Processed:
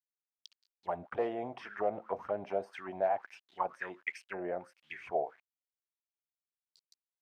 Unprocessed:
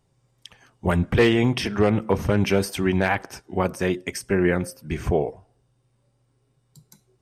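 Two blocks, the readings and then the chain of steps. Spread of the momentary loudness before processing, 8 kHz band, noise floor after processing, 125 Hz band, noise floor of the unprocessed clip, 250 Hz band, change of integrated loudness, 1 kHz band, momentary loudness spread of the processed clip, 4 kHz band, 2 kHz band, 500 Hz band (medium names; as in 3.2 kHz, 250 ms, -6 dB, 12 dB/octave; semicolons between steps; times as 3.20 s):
10 LU, under -25 dB, under -85 dBFS, -31.0 dB, -68 dBFS, -23.5 dB, -14.5 dB, -7.0 dB, 10 LU, -24.0 dB, -15.5 dB, -12.0 dB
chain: small samples zeroed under -43.5 dBFS; auto-wah 660–4700 Hz, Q 6.8, down, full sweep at -16.5 dBFS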